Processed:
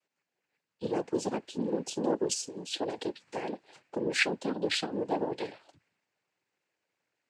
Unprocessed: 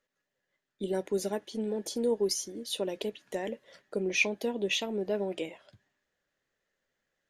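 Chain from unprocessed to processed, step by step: noise-vocoded speech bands 8

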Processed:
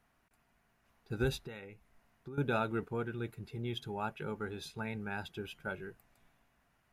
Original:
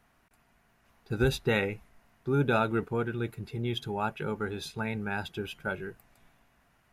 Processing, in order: 1.41–2.38 s: compression 4:1, threshold -40 dBFS, peak gain reduction 15 dB; trim -6.5 dB

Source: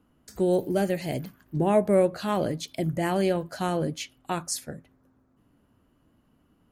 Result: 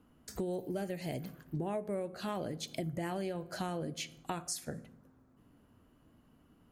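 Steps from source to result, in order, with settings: on a send at -16.5 dB: reverberation RT60 0.70 s, pre-delay 3 ms; on the sum: compression 6:1, threshold -35 dBFS, peak gain reduction 18 dB

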